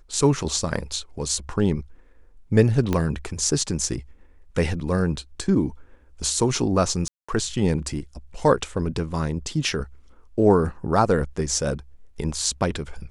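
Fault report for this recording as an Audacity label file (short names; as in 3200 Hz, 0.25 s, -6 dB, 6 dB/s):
2.930000	2.930000	pop -10 dBFS
7.080000	7.290000	gap 0.205 s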